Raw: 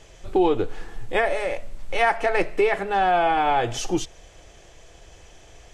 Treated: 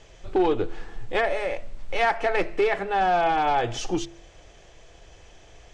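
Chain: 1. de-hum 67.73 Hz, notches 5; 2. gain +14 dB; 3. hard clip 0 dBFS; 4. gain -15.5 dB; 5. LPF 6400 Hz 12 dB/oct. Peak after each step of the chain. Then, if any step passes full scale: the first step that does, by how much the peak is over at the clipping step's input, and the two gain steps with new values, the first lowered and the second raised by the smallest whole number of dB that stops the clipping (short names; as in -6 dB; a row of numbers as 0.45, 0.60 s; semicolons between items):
-8.5, +5.5, 0.0, -15.5, -15.0 dBFS; step 2, 5.5 dB; step 2 +8 dB, step 4 -9.5 dB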